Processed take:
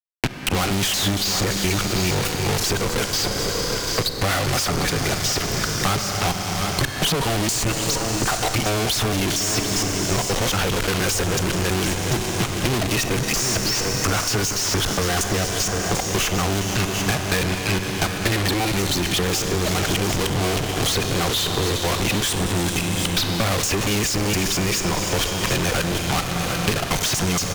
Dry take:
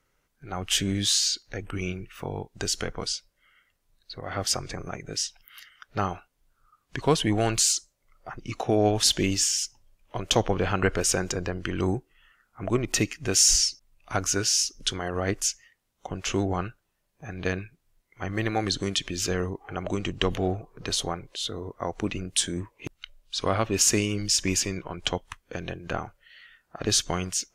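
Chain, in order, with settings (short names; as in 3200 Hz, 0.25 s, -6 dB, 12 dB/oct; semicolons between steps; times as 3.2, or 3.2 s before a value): local time reversal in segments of 0.234 s; fuzz box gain 46 dB, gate -43 dBFS; Schroeder reverb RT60 3.8 s, combs from 31 ms, DRR 9 dB; tube stage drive 21 dB, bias 0.55; on a send: echo 0.742 s -13.5 dB; on the sum: three-band squash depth 100%; gain +1 dB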